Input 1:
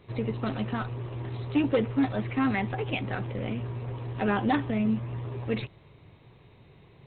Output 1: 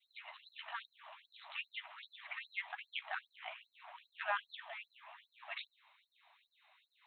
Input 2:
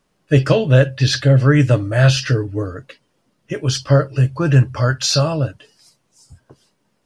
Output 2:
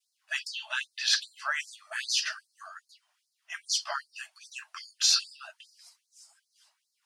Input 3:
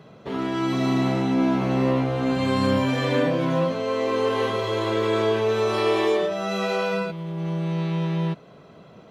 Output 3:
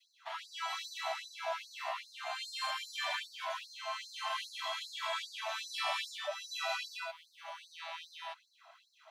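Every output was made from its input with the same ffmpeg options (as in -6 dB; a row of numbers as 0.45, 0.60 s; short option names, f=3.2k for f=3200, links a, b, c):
-af "adynamicequalizer=threshold=0.0141:dfrequency=1400:dqfactor=0.78:tfrequency=1400:tqfactor=0.78:attack=5:release=100:ratio=0.375:range=2:mode=cutabove:tftype=bell,afftfilt=real='re*gte(b*sr/1024,590*pow(4100/590,0.5+0.5*sin(2*PI*2.5*pts/sr)))':imag='im*gte(b*sr/1024,590*pow(4100/590,0.5+0.5*sin(2*PI*2.5*pts/sr)))':win_size=1024:overlap=0.75,volume=-3.5dB"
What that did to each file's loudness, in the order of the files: -16.0, -12.5, -15.5 LU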